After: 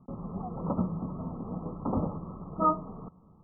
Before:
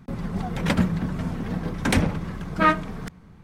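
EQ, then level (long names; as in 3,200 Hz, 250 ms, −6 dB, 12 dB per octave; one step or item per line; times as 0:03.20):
Chebyshev low-pass filter 1,300 Hz, order 10
low-shelf EQ 160 Hz −8.5 dB
−4.5 dB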